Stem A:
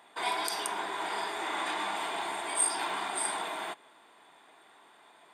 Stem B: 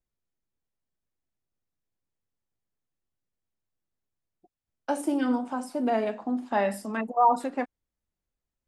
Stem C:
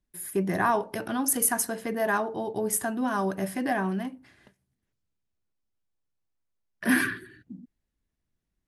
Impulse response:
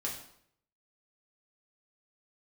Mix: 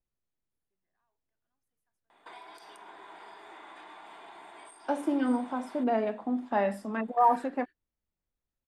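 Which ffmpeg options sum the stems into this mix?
-filter_complex "[0:a]bandreject=frequency=50:width_type=h:width=6,bandreject=frequency=100:width_type=h:width=6,bandreject=frequency=150:width_type=h:width=6,bandreject=frequency=200:width_type=h:width=6,adelay=2100,volume=-4dB[link_01];[1:a]volume=-1.5dB,asplit=2[link_02][link_03];[2:a]highpass=frequency=1400:poles=1,asoftclip=type=hard:threshold=-24dB,adelay=350,volume=-10dB[link_04];[link_03]apad=whole_len=397848[link_05];[link_04][link_05]sidechaingate=range=-42dB:threshold=-39dB:ratio=16:detection=peak[link_06];[link_01][link_06]amix=inputs=2:normalize=0,acompressor=threshold=-46dB:ratio=5,volume=0dB[link_07];[link_02][link_07]amix=inputs=2:normalize=0,highshelf=frequency=4200:gain=-12"

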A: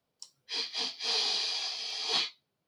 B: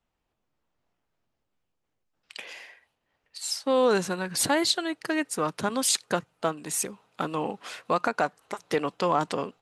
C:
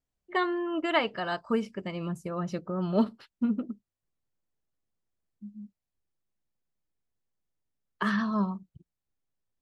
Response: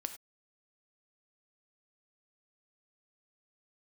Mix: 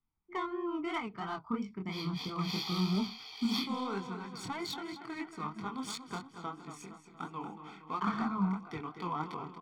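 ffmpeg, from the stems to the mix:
-filter_complex "[0:a]adelay=1400,volume=-8dB,asplit=3[link_01][link_02][link_03];[link_02]volume=-11dB[link_04];[link_03]volume=-12.5dB[link_05];[1:a]volume=-13dB,asplit=3[link_06][link_07][link_08];[link_07]volume=-9.5dB[link_09];[link_08]volume=-7dB[link_10];[2:a]acrossover=split=150[link_11][link_12];[link_12]acompressor=threshold=-28dB:ratio=10[link_13];[link_11][link_13]amix=inputs=2:normalize=0,volume=-2.5dB[link_14];[3:a]atrim=start_sample=2205[link_15];[link_04][link_09]amix=inputs=2:normalize=0[link_16];[link_16][link_15]afir=irnorm=-1:irlink=0[link_17];[link_05][link_10]amix=inputs=2:normalize=0,aecho=0:1:233|466|699|932|1165|1398|1631|1864:1|0.53|0.281|0.149|0.0789|0.0418|0.0222|0.0117[link_18];[link_01][link_06][link_14][link_17][link_18]amix=inputs=5:normalize=0,adynamicsmooth=sensitivity=5:basefreq=2800,flanger=delay=20:depth=7.2:speed=3,aecho=1:1:0.9:0.97"

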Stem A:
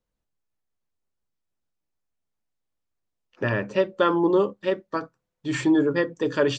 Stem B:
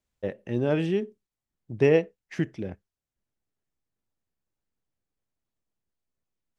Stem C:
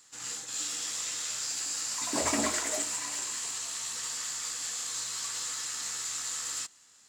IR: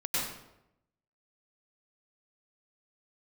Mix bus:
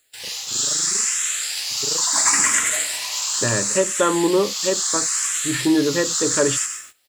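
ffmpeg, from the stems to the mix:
-filter_complex "[0:a]volume=2dB,asplit=2[link_01][link_02];[1:a]tremolo=f=25:d=1,volume=-11.5dB[link_03];[2:a]firequalizer=gain_entry='entry(110,0);entry(170,-10);entry(770,4);entry(1500,10);entry(7700,11)':delay=0.05:min_phase=1,acrusher=bits=7:mix=0:aa=0.000001,asplit=2[link_04][link_05];[link_05]afreqshift=0.73[link_06];[link_04][link_06]amix=inputs=2:normalize=1,volume=2dB,asplit=2[link_07][link_08];[link_08]volume=-11dB[link_09];[link_02]apad=whole_len=316870[link_10];[link_07][link_10]sidechaincompress=threshold=-20dB:ratio=8:attack=16:release=269[link_11];[3:a]atrim=start_sample=2205[link_12];[link_09][link_12]afir=irnorm=-1:irlink=0[link_13];[link_01][link_03][link_11][link_13]amix=inputs=4:normalize=0,agate=range=-16dB:threshold=-41dB:ratio=16:detection=peak"

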